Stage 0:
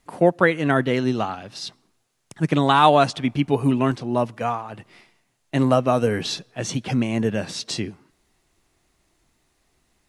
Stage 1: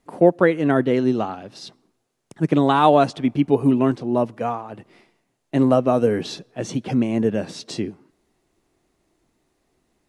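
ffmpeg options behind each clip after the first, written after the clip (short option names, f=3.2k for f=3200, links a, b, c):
-af "equalizer=f=350:w=0.49:g=10,volume=-6dB"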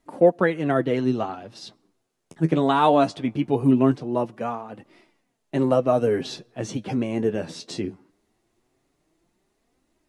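-af "flanger=delay=3:depth=9.4:regen=42:speed=0.2:shape=triangular,volume=1.5dB"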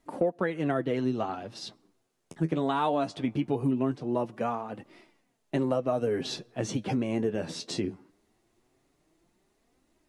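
-af "acompressor=threshold=-25dB:ratio=4"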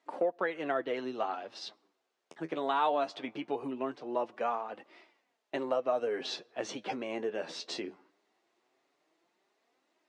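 -af "highpass=500,lowpass=4.9k"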